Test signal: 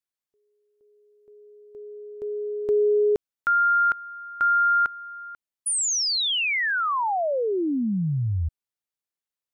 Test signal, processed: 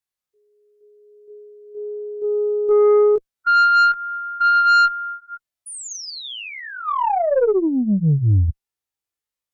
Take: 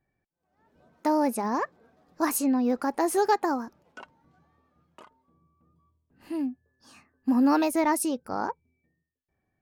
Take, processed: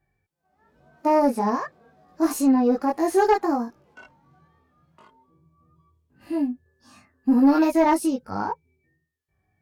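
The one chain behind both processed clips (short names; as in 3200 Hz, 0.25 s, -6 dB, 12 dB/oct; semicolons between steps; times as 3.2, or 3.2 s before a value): chorus voices 6, 0.35 Hz, delay 20 ms, depth 1.5 ms; harmonic-percussive split percussive -16 dB; added harmonics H 4 -27 dB, 5 -16 dB, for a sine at -12 dBFS; gain +5.5 dB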